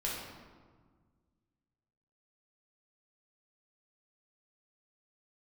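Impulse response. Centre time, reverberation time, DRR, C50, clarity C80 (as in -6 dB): 80 ms, 1.6 s, -5.5 dB, 0.0 dB, 3.0 dB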